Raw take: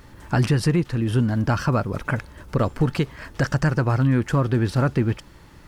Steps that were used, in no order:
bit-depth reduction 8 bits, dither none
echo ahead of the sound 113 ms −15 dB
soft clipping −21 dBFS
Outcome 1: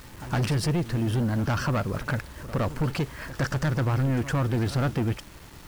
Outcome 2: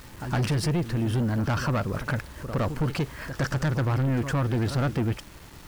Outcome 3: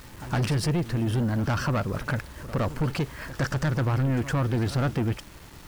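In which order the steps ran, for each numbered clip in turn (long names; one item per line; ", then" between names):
soft clipping, then bit-depth reduction, then echo ahead of the sound
bit-depth reduction, then echo ahead of the sound, then soft clipping
bit-depth reduction, then soft clipping, then echo ahead of the sound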